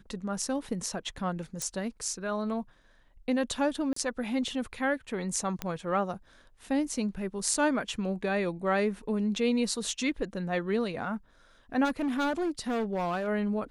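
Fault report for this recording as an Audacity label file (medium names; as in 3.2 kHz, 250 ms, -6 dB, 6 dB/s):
1.620000	1.620000	pop -18 dBFS
3.930000	3.960000	dropout 34 ms
5.620000	5.620000	pop -16 dBFS
7.540000	7.540000	dropout 2.9 ms
11.840000	13.280000	clipped -26 dBFS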